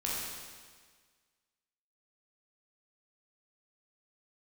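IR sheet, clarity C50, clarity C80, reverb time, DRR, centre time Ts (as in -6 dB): -2.0 dB, 0.5 dB, 1.6 s, -6.0 dB, 109 ms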